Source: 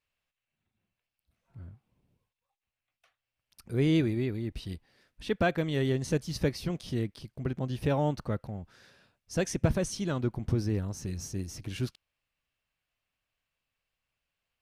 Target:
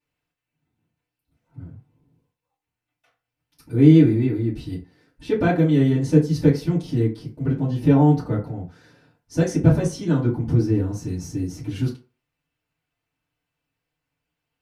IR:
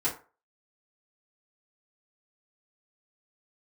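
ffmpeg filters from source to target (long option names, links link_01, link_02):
-filter_complex "[0:a]equalizer=frequency=190:width=0.6:gain=9.5[link_01];[1:a]atrim=start_sample=2205[link_02];[link_01][link_02]afir=irnorm=-1:irlink=0,volume=-4.5dB"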